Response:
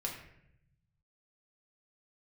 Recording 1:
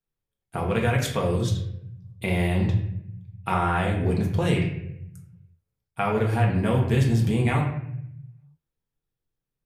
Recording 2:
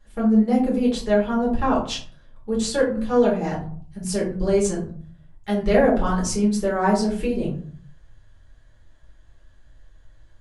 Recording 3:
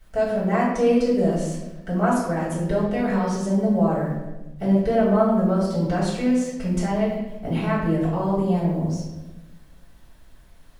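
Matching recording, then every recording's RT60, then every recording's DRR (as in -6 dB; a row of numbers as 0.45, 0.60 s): 1; 0.75, 0.50, 1.1 s; -2.0, -5.5, -10.0 dB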